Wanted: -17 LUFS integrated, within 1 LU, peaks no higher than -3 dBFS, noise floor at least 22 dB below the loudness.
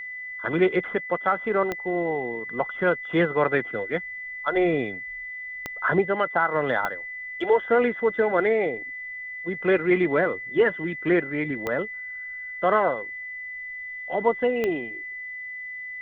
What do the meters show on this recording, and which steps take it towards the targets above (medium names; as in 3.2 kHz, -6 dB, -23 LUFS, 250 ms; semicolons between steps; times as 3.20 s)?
clicks found 5; steady tone 2 kHz; tone level -33 dBFS; loudness -25.5 LUFS; peak level -9.0 dBFS; loudness target -17.0 LUFS
-> de-click; band-stop 2 kHz, Q 30; trim +8.5 dB; peak limiter -3 dBFS